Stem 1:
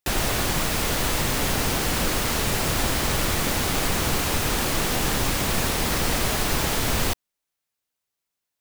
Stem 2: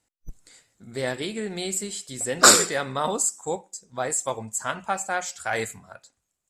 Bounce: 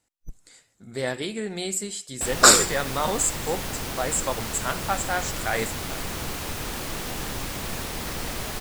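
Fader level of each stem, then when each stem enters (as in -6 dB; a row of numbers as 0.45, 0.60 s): -8.0, 0.0 dB; 2.15, 0.00 s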